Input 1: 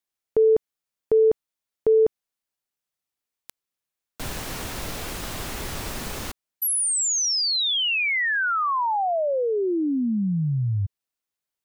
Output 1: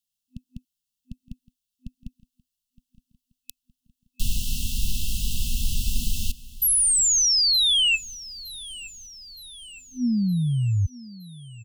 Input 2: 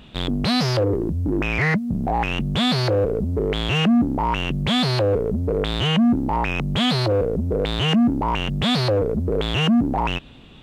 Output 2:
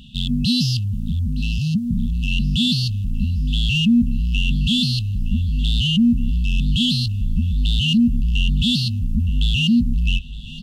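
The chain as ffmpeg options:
-af "asubboost=boost=4.5:cutoff=55,afftfilt=real='re*(1-between(b*sr/4096,250,2600))':imag='im*(1-between(b*sr/4096,250,2600))':win_size=4096:overlap=0.75,aecho=1:1:916|1832|2748|3664|4580:0.112|0.0617|0.0339|0.0187|0.0103,volume=3.5dB"

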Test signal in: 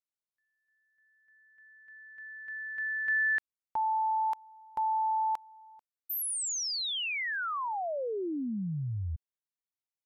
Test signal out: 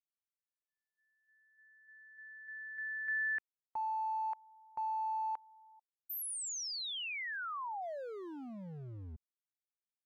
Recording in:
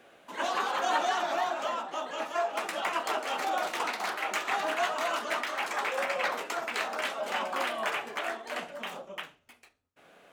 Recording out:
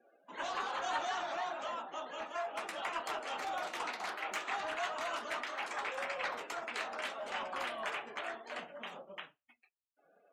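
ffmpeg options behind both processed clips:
-filter_complex "[0:a]afftdn=nr=27:nf=-53,acrossover=split=690[a][b];[a]asoftclip=type=hard:threshold=-38dB[c];[c][b]amix=inputs=2:normalize=0,volume=-7dB"

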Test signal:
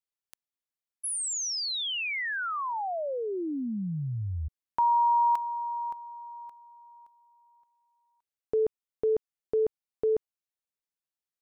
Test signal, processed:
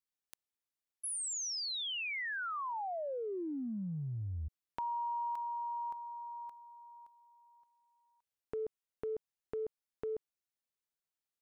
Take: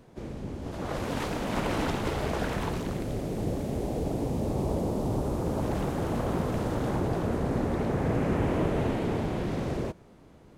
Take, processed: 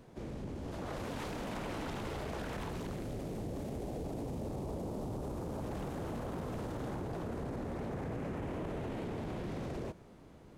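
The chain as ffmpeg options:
-af "acompressor=threshold=-35dB:ratio=5:attack=1.9:release=47:knee=6:detection=peak,volume=-2dB"

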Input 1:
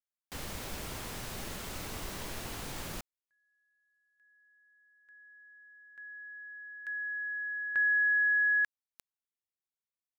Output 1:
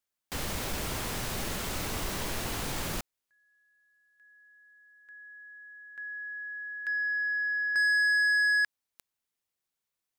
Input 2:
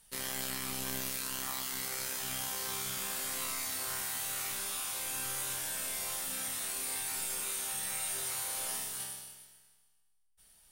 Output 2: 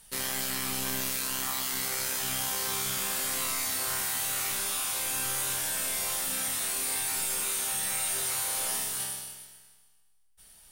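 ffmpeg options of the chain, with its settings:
-af "asoftclip=type=tanh:threshold=-30.5dB,volume=7.5dB"

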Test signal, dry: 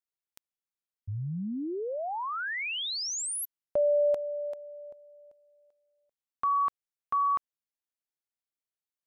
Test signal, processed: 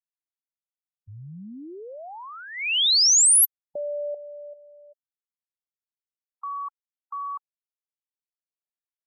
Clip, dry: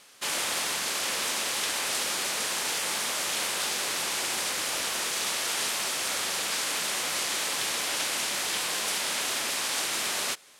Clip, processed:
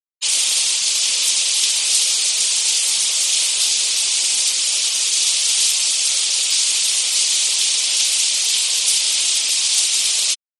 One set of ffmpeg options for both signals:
-af "equalizer=f=62:t=o:w=0.79:g=-10,afftfilt=real='re*gte(hypot(re,im),0.0282)':imag='im*gte(hypot(re,im),0.0282)':win_size=1024:overlap=0.75,aexciter=amount=13.1:drive=1.1:freq=2.5k,volume=-5.5dB"

